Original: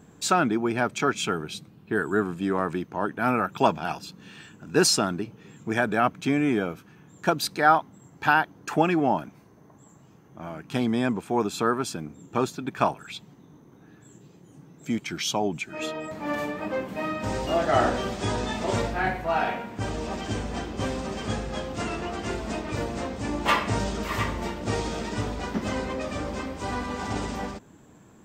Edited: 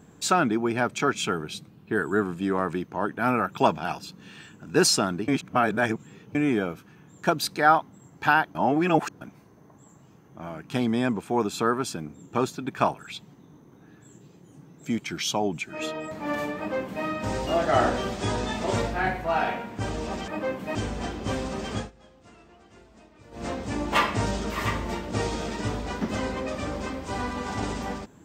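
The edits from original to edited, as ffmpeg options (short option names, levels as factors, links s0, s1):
-filter_complex "[0:a]asplit=9[s0][s1][s2][s3][s4][s5][s6][s7][s8];[s0]atrim=end=5.282[s9];[s1]atrim=start=5.278:end=6.352,asetpts=PTS-STARTPTS,areverse[s10];[s2]atrim=start=6.348:end=8.552[s11];[s3]atrim=start=8.548:end=9.212,asetpts=PTS-STARTPTS,areverse[s12];[s4]atrim=start=9.208:end=20.282[s13];[s5]atrim=start=16.568:end=17.042[s14];[s6]atrim=start=20.278:end=21.44,asetpts=PTS-STARTPTS,afade=t=out:st=1.002:d=0.16:silence=0.0794328[s15];[s7]atrim=start=21.44:end=22.84,asetpts=PTS-STARTPTS,volume=0.0794[s16];[s8]atrim=start=22.84,asetpts=PTS-STARTPTS,afade=t=in:d=0.16:silence=0.0794328[s17];[s9][s10]acrossfade=d=0.004:c1=hsin:c2=hsin[s18];[s18][s11]acrossfade=d=0.004:c1=hsin:c2=hsin[s19];[s19][s12]acrossfade=d=0.004:c1=hsin:c2=hsin[s20];[s20][s13]acrossfade=d=0.004:c1=hsin:c2=hsin[s21];[s21][s14]acrossfade=d=0.004:c1=hsin:c2=hsin[s22];[s15][s16][s17]concat=n=3:v=0:a=1[s23];[s22][s23]acrossfade=d=0.004:c1=hsin:c2=hsin"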